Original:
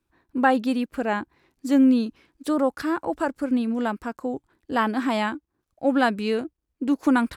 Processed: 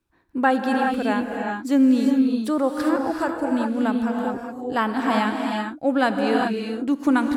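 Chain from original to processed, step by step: non-linear reverb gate 0.43 s rising, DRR 1.5 dB

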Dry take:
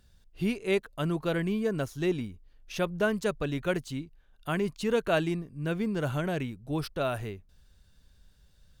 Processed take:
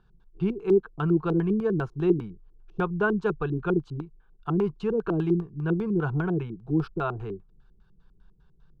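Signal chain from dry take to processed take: LFO low-pass square 5 Hz 320–1800 Hz; fixed phaser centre 390 Hz, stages 8; gain +4.5 dB

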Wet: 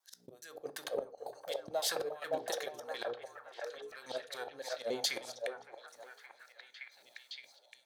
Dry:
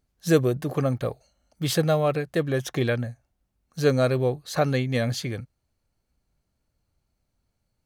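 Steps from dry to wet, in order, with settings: slices in reverse order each 0.14 s, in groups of 2; band shelf 1700 Hz -9 dB; notches 60/120/180/240/300/360/420/480 Hz; compressor 12:1, threshold -31 dBFS, peak gain reduction 17 dB; step gate ".x...xxx" 115 bpm -12 dB; soft clip -26.5 dBFS, distortion -21 dB; LFO high-pass sine 2.8 Hz 430–1700 Hz; auto swell 0.495 s; delay with a stepping band-pass 0.567 s, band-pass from 690 Hz, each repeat 0.7 oct, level -0.5 dB; on a send at -12 dB: reverb RT60 0.35 s, pre-delay 9 ms; on the sum: gain +15 dB

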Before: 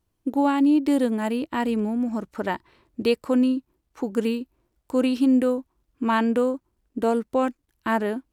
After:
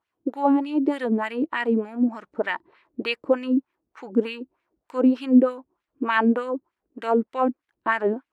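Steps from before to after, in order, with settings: wah 3.3 Hz 280–2300 Hz, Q 2; gain +8 dB

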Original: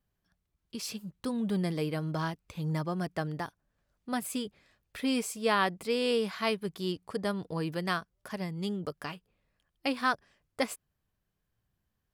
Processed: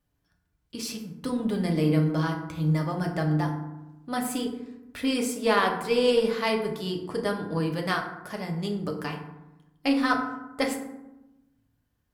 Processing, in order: FDN reverb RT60 0.95 s, low-frequency decay 1.45×, high-frequency decay 0.45×, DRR 1 dB; added harmonics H 6 -32 dB, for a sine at -10 dBFS; gain +2 dB

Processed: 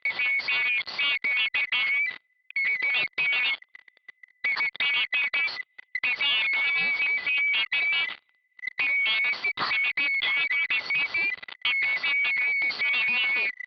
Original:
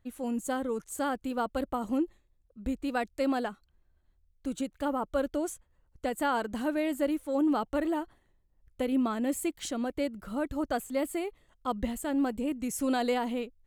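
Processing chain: band-swap scrambler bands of 2000 Hz; in parallel at -4 dB: fuzz box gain 55 dB, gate -59 dBFS; on the sum: HPF 250 Hz 6 dB/oct; compressor 2.5:1, threshold -24 dBFS, peak gain reduction 6.5 dB; rippled Chebyshev low-pass 4600 Hz, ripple 3 dB

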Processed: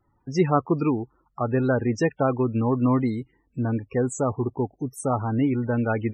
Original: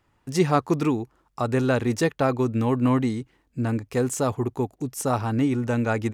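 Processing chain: loudest bins only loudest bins 32

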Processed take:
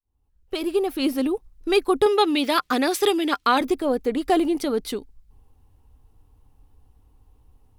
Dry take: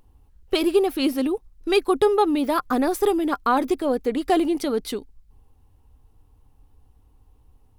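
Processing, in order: opening faded in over 1.17 s; 2.06–3.61 weighting filter D

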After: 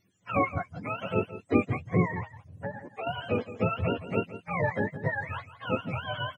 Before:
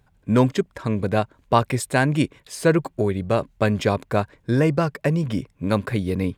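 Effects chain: spectrum mirrored in octaves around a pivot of 530 Hz; low shelf 450 Hz +5.5 dB; 2.06–3.07 compressor 12:1, threshold -24 dBFS, peak gain reduction 15 dB; on a send: echo 0.168 s -14 dB; on the sum: gain -8.5 dB

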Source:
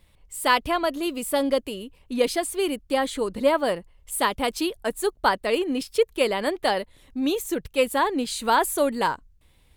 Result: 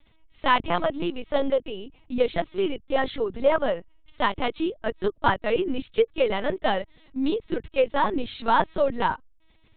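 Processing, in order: LPC vocoder at 8 kHz pitch kept

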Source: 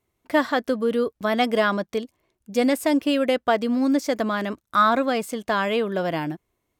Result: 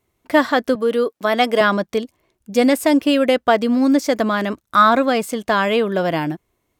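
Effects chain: 0.75–1.61 HPF 280 Hz 12 dB/oct; gain +5.5 dB

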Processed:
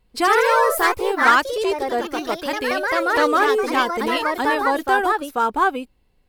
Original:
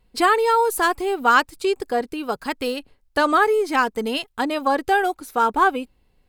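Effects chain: echoes that change speed 96 ms, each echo +2 st, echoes 3; gain -1 dB

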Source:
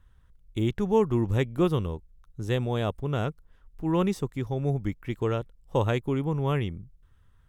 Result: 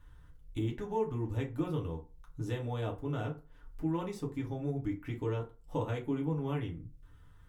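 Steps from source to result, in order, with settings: compressor 2.5:1, threshold -43 dBFS, peak gain reduction 17 dB; FDN reverb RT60 0.32 s, low-frequency decay 1×, high-frequency decay 0.6×, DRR -2 dB

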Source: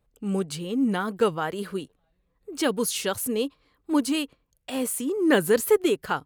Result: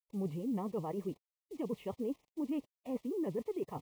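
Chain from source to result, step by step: LPF 1900 Hz 24 dB/oct; harmonic-percussive split percussive -4 dB; limiter -18.5 dBFS, peak gain reduction 7.5 dB; reverse; compressor 4:1, threshold -36 dBFS, peak gain reduction 12.5 dB; reverse; requantised 10-bit, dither none; time stretch by phase-locked vocoder 0.61×; Butterworth band-stop 1500 Hz, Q 1.6; gain +1 dB

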